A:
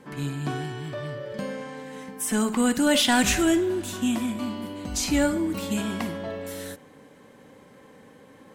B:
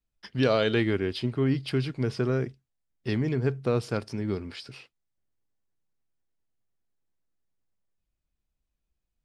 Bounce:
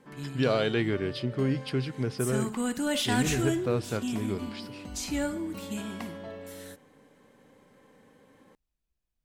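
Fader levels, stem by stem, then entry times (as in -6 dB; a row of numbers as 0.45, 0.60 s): -8.0, -2.5 dB; 0.00, 0.00 s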